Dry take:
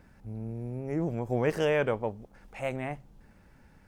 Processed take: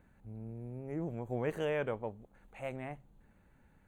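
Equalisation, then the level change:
Butterworth band-reject 5,200 Hz, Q 3.2
parametric band 5,800 Hz −2.5 dB 2.3 octaves
−7.5 dB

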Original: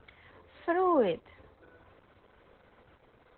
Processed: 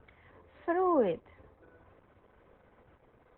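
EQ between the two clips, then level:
high-frequency loss of the air 440 metres
notch filter 1,400 Hz, Q 22
0.0 dB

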